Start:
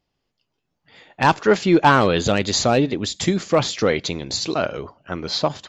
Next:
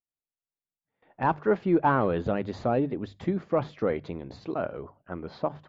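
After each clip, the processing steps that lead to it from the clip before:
low-pass filter 1,300 Hz 12 dB per octave
mains-hum notches 50/100/150 Hz
noise gate with hold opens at −43 dBFS
level −7.5 dB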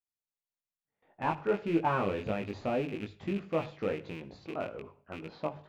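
loose part that buzzes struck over −34 dBFS, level −27 dBFS
chorus effect 1.7 Hz, delay 18.5 ms, depth 2.2 ms
convolution reverb RT60 0.45 s, pre-delay 53 ms, DRR 17 dB
level −3 dB

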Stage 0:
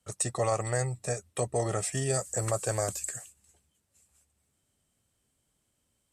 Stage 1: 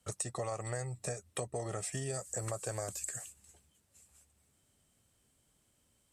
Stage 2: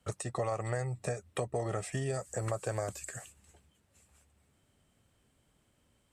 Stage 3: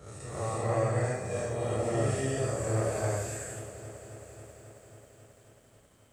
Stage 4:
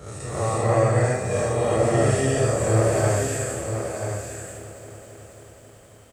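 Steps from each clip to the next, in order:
downward compressor 5 to 1, threshold −39 dBFS, peak gain reduction 14 dB; level +3 dB
bass and treble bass 0 dB, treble −10 dB; level +4.5 dB
spectrum smeared in time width 136 ms; reverb whose tail is shaped and stops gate 380 ms rising, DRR −7 dB; feedback echo at a low word length 270 ms, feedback 80%, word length 10 bits, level −14.5 dB
single-tap delay 986 ms −7.5 dB; level +9 dB

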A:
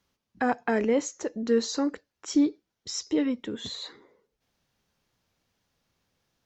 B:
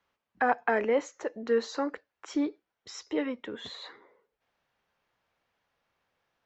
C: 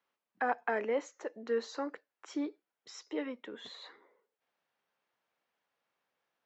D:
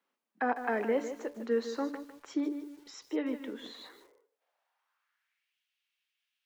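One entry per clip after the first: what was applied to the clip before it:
three-way crossover with the lows and the highs turned down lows −13 dB, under 470 Hz, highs −16 dB, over 2,900 Hz; level +3 dB
high-pass filter 200 Hz 12 dB per octave; level −6 dB
high-pass filter sweep 230 Hz → 2,800 Hz, 0:03.83–0:05.57; hum removal 144.6 Hz, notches 8; feedback echo at a low word length 153 ms, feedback 35%, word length 9 bits, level −10 dB

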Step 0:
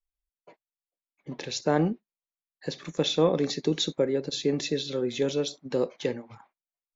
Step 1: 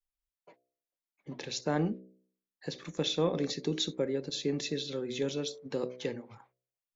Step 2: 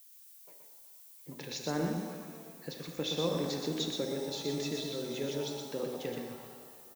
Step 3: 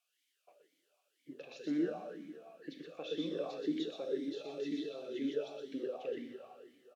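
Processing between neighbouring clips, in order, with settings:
hum removal 62.91 Hz, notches 11; dynamic equaliser 690 Hz, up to −3 dB, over −35 dBFS, Q 0.72; level −4 dB
background noise violet −53 dBFS; single-tap delay 123 ms −5 dB; reverb with rising layers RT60 2 s, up +7 semitones, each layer −8 dB, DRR 5 dB; level −4.5 dB
formant filter swept between two vowels a-i 2 Hz; level +6.5 dB

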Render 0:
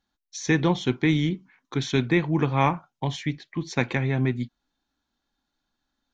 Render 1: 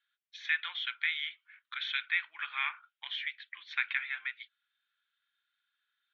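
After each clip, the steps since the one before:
elliptic band-pass filter 1,400–3,500 Hz, stop band 80 dB
in parallel at −0.5 dB: downward compressor, threshold −40 dBFS, peak gain reduction 15.5 dB
on the sum: level −2.5 dB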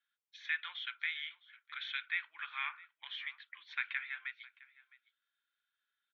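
Chebyshev high-pass with heavy ripple 310 Hz, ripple 3 dB
single-tap delay 661 ms −21.5 dB
level −4 dB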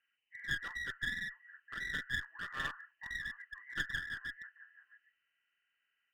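hearing-aid frequency compression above 1,600 Hz 4 to 1
on a send at −21 dB: convolution reverb RT60 0.50 s, pre-delay 3 ms
on the sum: asymmetric clip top −44.5 dBFS
level +2 dB

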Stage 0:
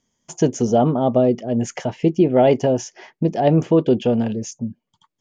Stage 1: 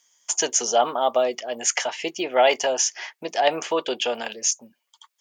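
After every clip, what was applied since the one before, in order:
high-pass filter 950 Hz 12 dB per octave
spectral tilt +2 dB per octave
level +7 dB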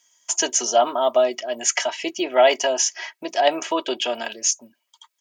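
comb filter 3.1 ms, depth 63%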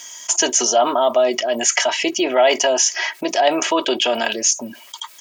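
envelope flattener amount 50%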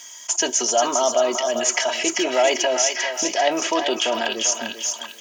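feedback echo with a high-pass in the loop 395 ms, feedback 46%, high-pass 850 Hz, level −4 dB
on a send at −21.5 dB: convolution reverb RT60 2.7 s, pre-delay 22 ms
on the sum: level −4 dB

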